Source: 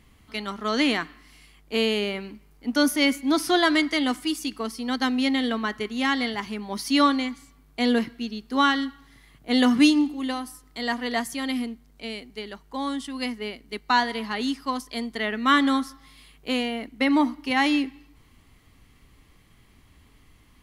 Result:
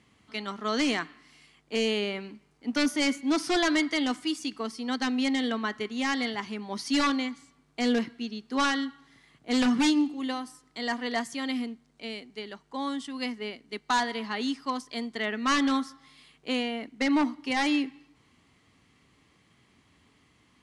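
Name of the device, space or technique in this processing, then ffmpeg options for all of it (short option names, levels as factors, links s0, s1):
synthesiser wavefolder: -af "highpass=130,aeval=exprs='0.178*(abs(mod(val(0)/0.178+3,4)-2)-1)':c=same,lowpass=f=8900:w=0.5412,lowpass=f=8900:w=1.3066,volume=0.708"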